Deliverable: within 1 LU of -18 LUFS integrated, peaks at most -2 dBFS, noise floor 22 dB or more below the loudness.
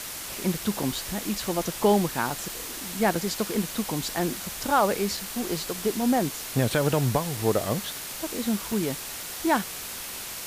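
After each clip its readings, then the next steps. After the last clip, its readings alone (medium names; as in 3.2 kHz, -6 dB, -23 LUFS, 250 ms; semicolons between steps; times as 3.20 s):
dropouts 6; longest dropout 2.7 ms; noise floor -37 dBFS; noise floor target -49 dBFS; loudness -27.0 LUFS; peak level -10.0 dBFS; loudness target -18.0 LUFS
-> interpolate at 0.83/2.30/3.15/5.17/7.37/8.72 s, 2.7 ms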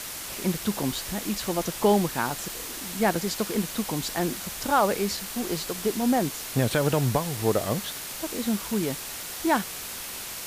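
dropouts 0; noise floor -37 dBFS; noise floor target -49 dBFS
-> noise reduction 12 dB, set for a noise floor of -37 dBFS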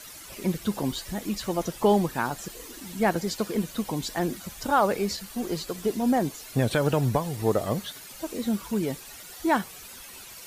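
noise floor -44 dBFS; noise floor target -50 dBFS
-> noise reduction 6 dB, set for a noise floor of -44 dBFS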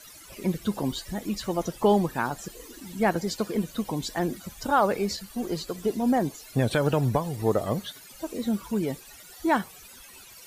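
noise floor -48 dBFS; noise floor target -50 dBFS
-> noise reduction 6 dB, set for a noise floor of -48 dBFS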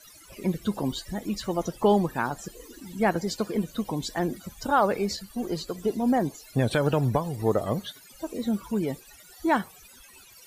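noise floor -52 dBFS; loudness -27.5 LUFS; peak level -10.5 dBFS; loudness target -18.0 LUFS
-> trim +9.5 dB; peak limiter -2 dBFS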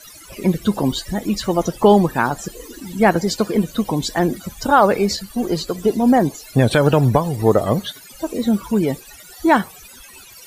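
loudness -18.5 LUFS; peak level -2.0 dBFS; noise floor -42 dBFS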